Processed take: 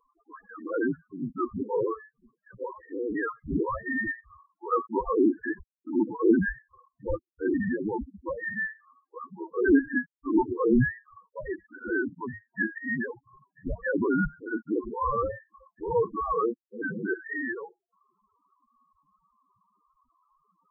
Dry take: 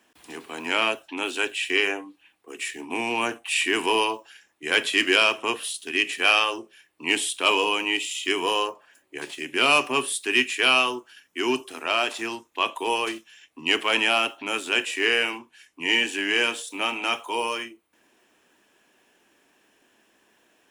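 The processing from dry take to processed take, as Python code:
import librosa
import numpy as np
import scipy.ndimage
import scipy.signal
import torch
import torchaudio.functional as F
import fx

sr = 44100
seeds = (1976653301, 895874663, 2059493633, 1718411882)

y = scipy.signal.sosfilt(scipy.signal.butter(4, 1100.0, 'highpass', fs=sr, output='sos'), x)
y = fx.spec_topn(y, sr, count=4)
y = fx.freq_invert(y, sr, carrier_hz=2800)
y = F.gain(torch.from_numpy(y), 4.5).numpy()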